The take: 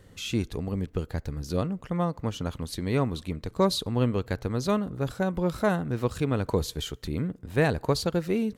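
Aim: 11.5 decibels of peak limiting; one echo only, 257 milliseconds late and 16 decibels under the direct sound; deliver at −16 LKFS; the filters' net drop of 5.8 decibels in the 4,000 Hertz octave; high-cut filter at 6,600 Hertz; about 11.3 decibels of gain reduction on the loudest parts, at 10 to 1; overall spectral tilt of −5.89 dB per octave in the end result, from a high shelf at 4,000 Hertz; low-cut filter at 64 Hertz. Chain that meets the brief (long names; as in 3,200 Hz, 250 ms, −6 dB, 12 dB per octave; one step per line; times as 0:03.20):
high-pass filter 64 Hz
low-pass filter 6,600 Hz
high-shelf EQ 4,000 Hz −4 dB
parametric band 4,000 Hz −4 dB
downward compressor 10 to 1, threshold −30 dBFS
brickwall limiter −31.5 dBFS
single-tap delay 257 ms −16 dB
level +25 dB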